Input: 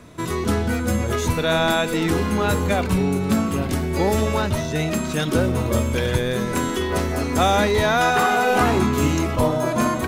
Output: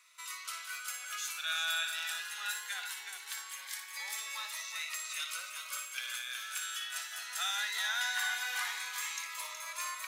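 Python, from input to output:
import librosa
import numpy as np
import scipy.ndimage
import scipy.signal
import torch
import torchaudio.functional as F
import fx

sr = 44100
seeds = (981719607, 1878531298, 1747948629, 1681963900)

y = scipy.signal.sosfilt(scipy.signal.butter(4, 1400.0, 'highpass', fs=sr, output='sos'), x)
y = fx.echo_multitap(y, sr, ms=(58, 369), db=(-8.5, -7.0))
y = fx.notch_cascade(y, sr, direction='rising', hz=0.2)
y = y * librosa.db_to_amplitude(-7.5)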